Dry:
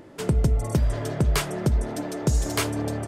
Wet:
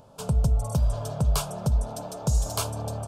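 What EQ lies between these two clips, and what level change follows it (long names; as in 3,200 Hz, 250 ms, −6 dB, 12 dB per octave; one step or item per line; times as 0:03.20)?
phaser with its sweep stopped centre 800 Hz, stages 4
0.0 dB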